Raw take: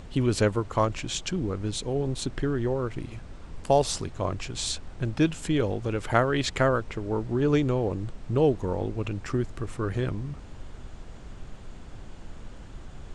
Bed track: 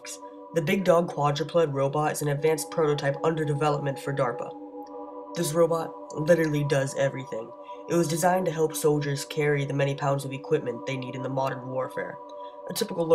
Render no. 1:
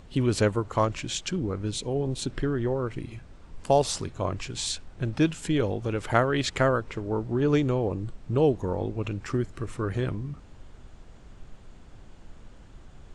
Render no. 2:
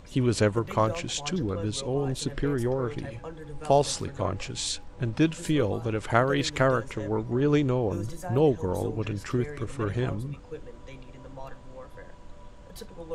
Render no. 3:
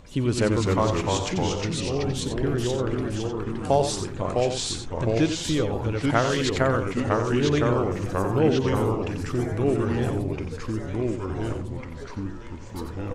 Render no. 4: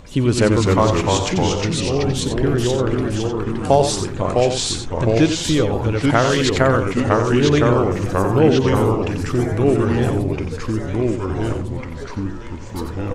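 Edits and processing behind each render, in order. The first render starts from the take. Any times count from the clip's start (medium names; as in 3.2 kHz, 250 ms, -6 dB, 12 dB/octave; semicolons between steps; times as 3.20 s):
noise print and reduce 6 dB
add bed track -15.5 dB
ever faster or slower copies 203 ms, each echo -2 st, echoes 2; on a send: delay 90 ms -8.5 dB
trim +7 dB; peak limiter -2 dBFS, peak gain reduction 2.5 dB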